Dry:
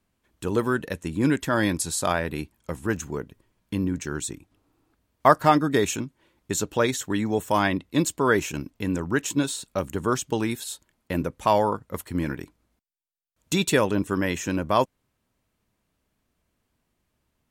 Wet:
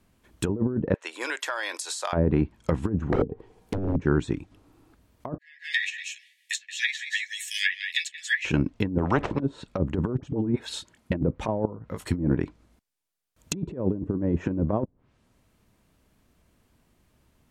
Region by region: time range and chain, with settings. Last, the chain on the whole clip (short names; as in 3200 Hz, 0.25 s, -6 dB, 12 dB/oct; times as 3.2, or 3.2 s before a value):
0.94–2.13 Bessel high-pass 830 Hz, order 6 + compressor 10:1, threshold -33 dBFS
3.12–3.96 small resonant body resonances 450/760 Hz, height 18 dB + wrapped overs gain 17.5 dB + high shelf 10000 Hz +8.5 dB
5.38–8.45 Chebyshev high-pass 1700 Hz, order 10 + doubler 12 ms -4 dB + echo 0.177 s -10.5 dB
8.98–9.4 brick-wall FIR low-pass 9300 Hz + spectral compressor 4:1
10.17–11.12 HPF 54 Hz + dispersion highs, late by 59 ms, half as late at 790 Hz
11.65–12.09 doubler 18 ms -6.5 dB + compressor 10:1, threshold -39 dBFS
whole clip: treble ducked by the level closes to 450 Hz, closed at -22 dBFS; low shelf 470 Hz +3.5 dB; negative-ratio compressor -27 dBFS, ratio -0.5; gain +4 dB